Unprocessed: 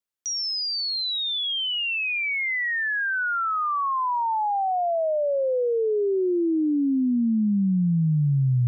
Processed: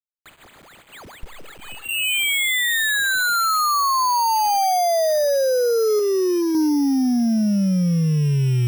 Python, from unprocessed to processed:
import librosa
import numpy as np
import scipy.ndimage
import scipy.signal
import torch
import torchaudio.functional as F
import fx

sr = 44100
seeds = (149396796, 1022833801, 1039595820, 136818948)

y = fx.lower_of_two(x, sr, delay_ms=2.3, at=(1.23, 1.88))
y = fx.peak_eq(y, sr, hz=160.0, db=-8.0, octaves=2.6, at=(5.99, 6.55))
y = fx.rider(y, sr, range_db=3, speed_s=0.5)
y = fx.quant_dither(y, sr, seeds[0], bits=6, dither='none')
y = 10.0 ** (-22.0 / 20.0) * np.tanh(y / 10.0 ** (-22.0 / 20.0))
y = np.repeat(scipy.signal.resample_poly(y, 1, 8), 8)[:len(y)]
y = y * 10.0 ** (7.5 / 20.0)